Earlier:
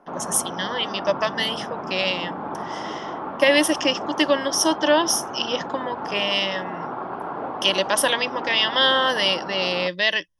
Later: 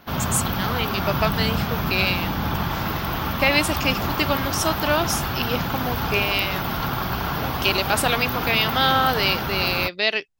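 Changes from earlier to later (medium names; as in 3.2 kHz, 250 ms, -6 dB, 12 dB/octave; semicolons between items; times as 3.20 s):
speech: remove rippled EQ curve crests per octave 1.2, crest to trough 14 dB; background: remove Butterworth band-pass 560 Hz, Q 0.72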